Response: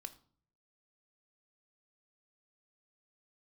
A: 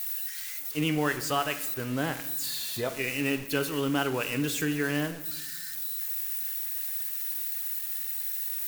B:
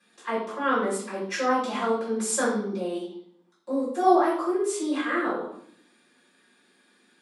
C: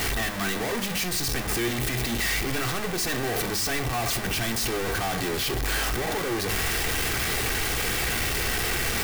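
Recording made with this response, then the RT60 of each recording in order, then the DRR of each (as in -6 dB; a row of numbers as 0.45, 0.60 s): C; 1.1, 0.65, 0.50 s; 8.0, -11.0, 6.0 dB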